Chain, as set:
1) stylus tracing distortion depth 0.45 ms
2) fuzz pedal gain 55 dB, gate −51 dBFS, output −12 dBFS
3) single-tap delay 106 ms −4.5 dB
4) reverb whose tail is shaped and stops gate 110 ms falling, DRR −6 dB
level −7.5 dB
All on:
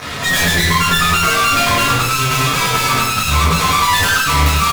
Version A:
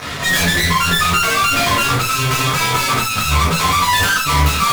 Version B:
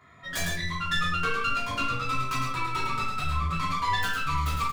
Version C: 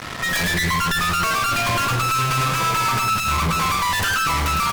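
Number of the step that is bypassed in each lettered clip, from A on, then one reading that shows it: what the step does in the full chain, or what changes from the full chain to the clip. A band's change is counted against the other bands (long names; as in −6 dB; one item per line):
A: 3, echo-to-direct ratio 7.5 dB to 6.0 dB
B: 2, 8 kHz band −6.5 dB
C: 4, echo-to-direct ratio 7.5 dB to −4.5 dB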